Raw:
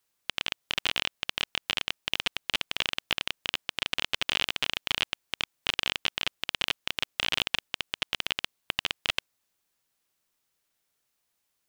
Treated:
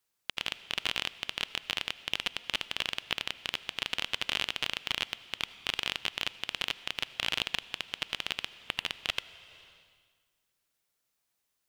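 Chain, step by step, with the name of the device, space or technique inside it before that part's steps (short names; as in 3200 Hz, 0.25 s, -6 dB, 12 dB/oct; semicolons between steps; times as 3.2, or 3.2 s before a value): compressed reverb return (on a send at -6 dB: reverb RT60 1.5 s, pre-delay 73 ms + compressor 6:1, threshold -40 dBFS, peak gain reduction 13 dB); on the sum: gain -3.5 dB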